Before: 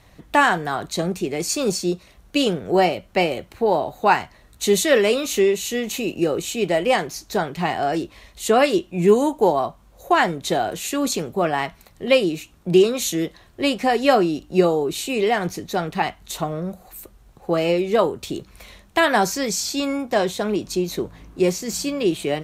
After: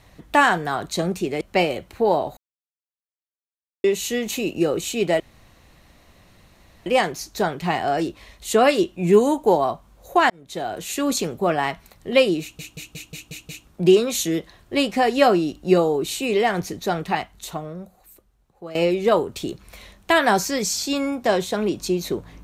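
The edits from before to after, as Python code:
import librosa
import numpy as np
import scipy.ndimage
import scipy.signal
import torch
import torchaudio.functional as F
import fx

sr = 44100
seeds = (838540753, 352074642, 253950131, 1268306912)

y = fx.edit(x, sr, fx.cut(start_s=1.41, length_s=1.61),
    fx.silence(start_s=3.98, length_s=1.47),
    fx.insert_room_tone(at_s=6.81, length_s=1.66),
    fx.fade_in_span(start_s=10.25, length_s=0.71),
    fx.stutter(start_s=12.36, slice_s=0.18, count=7),
    fx.fade_out_to(start_s=15.88, length_s=1.74, curve='qua', floor_db=-15.5), tone=tone)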